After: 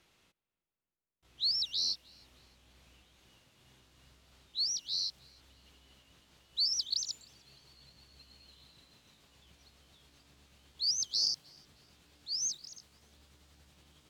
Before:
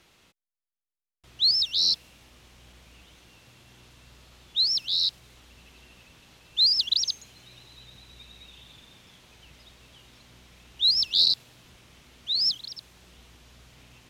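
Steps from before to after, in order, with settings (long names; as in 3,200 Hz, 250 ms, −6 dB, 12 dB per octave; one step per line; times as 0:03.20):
pitch glide at a constant tempo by +3.5 semitones starting unshifted
on a send: feedback echo with a low-pass in the loop 308 ms, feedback 75%, low-pass 2,400 Hz, level −22 dB
on the sum: level −8.5 dB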